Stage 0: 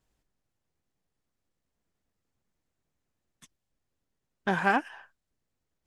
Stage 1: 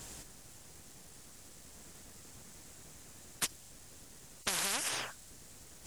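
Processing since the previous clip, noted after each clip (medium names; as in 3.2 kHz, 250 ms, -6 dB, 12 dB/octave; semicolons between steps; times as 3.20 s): peaking EQ 8.4 kHz +12 dB 1.5 oct; compression 6:1, threshold -28 dBFS, peak gain reduction 10 dB; spectrum-flattening compressor 10:1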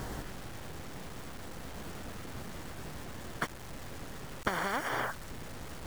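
compression 2:1, threshold -40 dBFS, peak gain reduction 6.5 dB; Savitzky-Golay filter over 41 samples; word length cut 10-bit, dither none; trim +13.5 dB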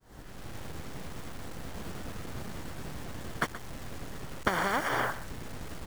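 fade-in on the opening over 0.55 s; in parallel at -5 dB: hysteresis with a dead band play -40 dBFS; on the sum: delay 126 ms -14 dB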